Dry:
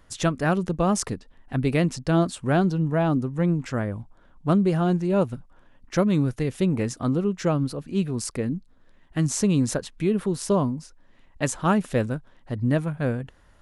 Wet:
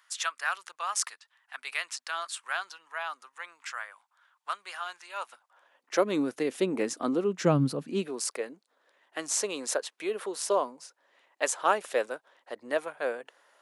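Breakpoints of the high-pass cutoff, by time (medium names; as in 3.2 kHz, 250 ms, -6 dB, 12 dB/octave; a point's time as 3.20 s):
high-pass 24 dB/octave
5.14 s 1.1 kHz
6.21 s 280 Hz
7.27 s 280 Hz
7.61 s 110 Hz
8.25 s 460 Hz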